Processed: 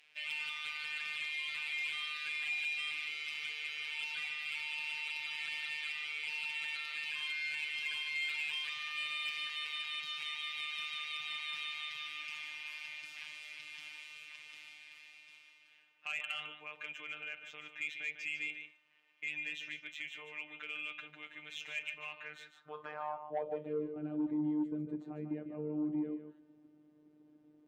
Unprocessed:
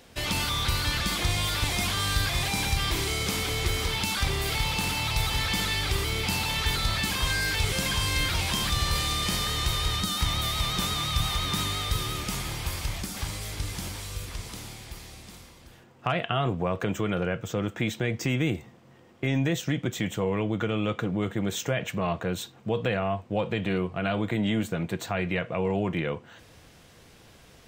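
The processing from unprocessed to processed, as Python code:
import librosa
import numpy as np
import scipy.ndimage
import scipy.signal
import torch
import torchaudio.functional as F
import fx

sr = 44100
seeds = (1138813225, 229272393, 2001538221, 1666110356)

p1 = fx.filter_sweep_bandpass(x, sr, from_hz=2500.0, to_hz=300.0, start_s=22.1, end_s=24.09, q=4.9)
p2 = fx.robotise(p1, sr, hz=151.0)
p3 = p2 + fx.echo_single(p2, sr, ms=149, db=-9.5, dry=0)
p4 = fx.cheby_harmonics(p3, sr, harmonics=(5,), levels_db=(-19,), full_scale_db=-22.0)
y = p4 * 10.0 ** (-1.5 / 20.0)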